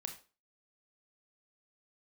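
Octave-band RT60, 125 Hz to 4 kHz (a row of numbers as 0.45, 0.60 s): 0.30, 0.35, 0.35, 0.35, 0.30, 0.30 s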